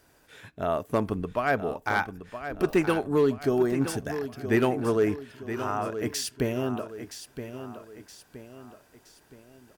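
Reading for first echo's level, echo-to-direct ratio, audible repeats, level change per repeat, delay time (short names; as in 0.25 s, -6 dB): -10.5 dB, -9.5 dB, 3, -7.5 dB, 0.97 s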